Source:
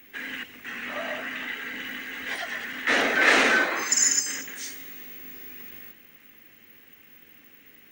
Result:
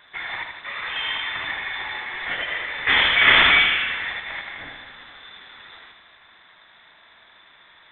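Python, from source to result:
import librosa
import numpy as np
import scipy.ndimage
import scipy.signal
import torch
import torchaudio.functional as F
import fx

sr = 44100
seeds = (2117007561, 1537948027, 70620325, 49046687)

y = fx.freq_invert(x, sr, carrier_hz=3800)
y = fx.echo_feedback(y, sr, ms=79, feedback_pct=55, wet_db=-6.5)
y = y * librosa.db_to_amplitude(4.0)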